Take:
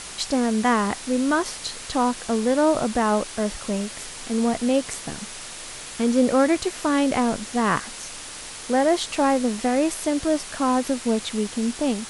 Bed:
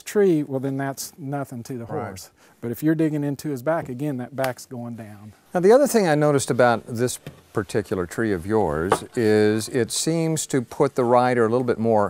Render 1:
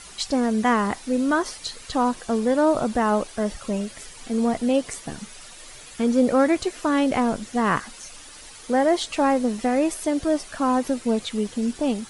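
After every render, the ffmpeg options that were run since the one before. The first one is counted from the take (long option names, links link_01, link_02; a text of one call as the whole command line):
ffmpeg -i in.wav -af "afftdn=noise_reduction=10:noise_floor=-37" out.wav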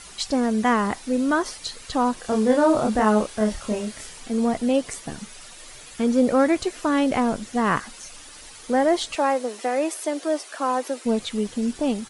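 ffmpeg -i in.wav -filter_complex "[0:a]asplit=3[link_01][link_02][link_03];[link_01]afade=type=out:start_time=2.23:duration=0.02[link_04];[link_02]asplit=2[link_05][link_06];[link_06]adelay=28,volume=-2.5dB[link_07];[link_05][link_07]amix=inputs=2:normalize=0,afade=type=in:start_time=2.23:duration=0.02,afade=type=out:start_time=4.18:duration=0.02[link_08];[link_03]afade=type=in:start_time=4.18:duration=0.02[link_09];[link_04][link_08][link_09]amix=inputs=3:normalize=0,asettb=1/sr,asplit=3[link_10][link_11][link_12];[link_10]atrim=end=9.154[link_13];[link_11]atrim=start=9.15:end=11.05,asetpts=PTS-STARTPTS,afade=type=in:duration=0.004:curve=qsin,afade=type=out:start_time=1.896:duration=0.004:curve=qsin,highpass=frequency=340:width=0.5412,highpass=frequency=340:width=1.3066[link_14];[link_12]atrim=start=11.046[link_15];[link_13][link_14]acrossfade=duration=0.004:curve1=hsin:curve2=qsin[link_16];[link_16][link_15]acrossfade=duration=0.004:curve1=qsin:curve2=hsin" out.wav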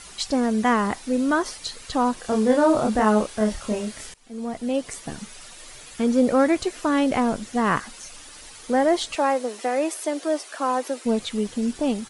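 ffmpeg -i in.wav -filter_complex "[0:a]asplit=2[link_01][link_02];[link_01]atrim=end=4.14,asetpts=PTS-STARTPTS,afade=type=out:start_time=4.136:duration=0.004:curve=hsin:silence=0.0794328[link_03];[link_02]atrim=start=4.14,asetpts=PTS-STARTPTS,afade=type=in:duration=0.96:silence=0.0794328[link_04];[link_03][link_04]concat=n=2:v=0:a=1" out.wav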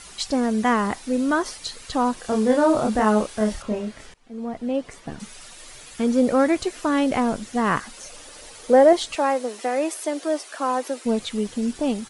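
ffmpeg -i in.wav -filter_complex "[0:a]asettb=1/sr,asplit=3[link_01][link_02][link_03];[link_01]atrim=end=3.624[link_04];[link_02]atrim=start=3.62:end=5.2,asetpts=PTS-STARTPTS,afade=type=in:duration=0.004:curve=qsin,afade=type=out:start_time=1.576:duration=0.004:curve=qsin,aemphasis=mode=reproduction:type=75kf[link_05];[link_03]atrim=start=5.196[link_06];[link_04][link_05]acrossfade=duration=0.004:curve1=hsin:curve2=qsin[link_07];[link_07][link_06]acrossfade=duration=0.004:curve1=qsin:curve2=hsin,asettb=1/sr,asplit=3[link_08][link_09][link_10];[link_08]atrim=end=7.974[link_11];[link_09]atrim=start=7.97:end=8.93,asetpts=PTS-STARTPTS,afade=type=in:duration=0.004:curve=qsin,afade=type=out:start_time=0.956:duration=0.004:curve=qsin,equalizer=frequency=530:width_type=o:width=0.84:gain=9.5[link_12];[link_10]atrim=start=8.926[link_13];[link_11][link_12]acrossfade=duration=0.004:curve1=hsin:curve2=qsin[link_14];[link_14][link_13]acrossfade=duration=0.004:curve1=qsin:curve2=hsin" out.wav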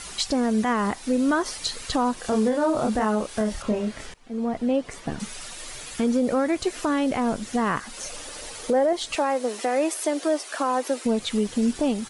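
ffmpeg -i in.wav -filter_complex "[0:a]asplit=2[link_01][link_02];[link_02]acompressor=threshold=-29dB:ratio=6,volume=-2.5dB[link_03];[link_01][link_03]amix=inputs=2:normalize=0,alimiter=limit=-14dB:level=0:latency=1:release=232" out.wav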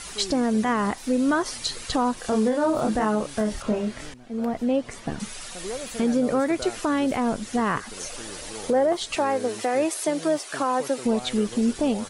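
ffmpeg -i in.wav -i bed.wav -filter_complex "[1:a]volume=-19.5dB[link_01];[0:a][link_01]amix=inputs=2:normalize=0" out.wav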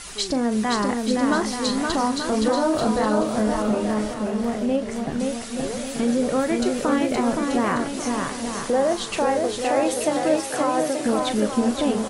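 ffmpeg -i in.wav -filter_complex "[0:a]asplit=2[link_01][link_02];[link_02]adelay=38,volume=-11.5dB[link_03];[link_01][link_03]amix=inputs=2:normalize=0,aecho=1:1:520|884|1139|1317|1442:0.631|0.398|0.251|0.158|0.1" out.wav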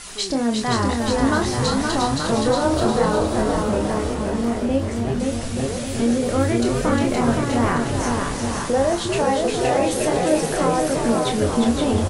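ffmpeg -i in.wav -filter_complex "[0:a]asplit=2[link_01][link_02];[link_02]adelay=26,volume=-5.5dB[link_03];[link_01][link_03]amix=inputs=2:normalize=0,asplit=6[link_04][link_05][link_06][link_07][link_08][link_09];[link_05]adelay=355,afreqshift=-140,volume=-5dB[link_10];[link_06]adelay=710,afreqshift=-280,volume=-12.5dB[link_11];[link_07]adelay=1065,afreqshift=-420,volume=-20.1dB[link_12];[link_08]adelay=1420,afreqshift=-560,volume=-27.6dB[link_13];[link_09]adelay=1775,afreqshift=-700,volume=-35.1dB[link_14];[link_04][link_10][link_11][link_12][link_13][link_14]amix=inputs=6:normalize=0" out.wav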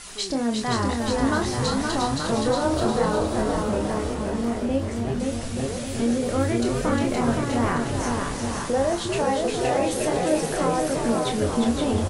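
ffmpeg -i in.wav -af "volume=-3.5dB" out.wav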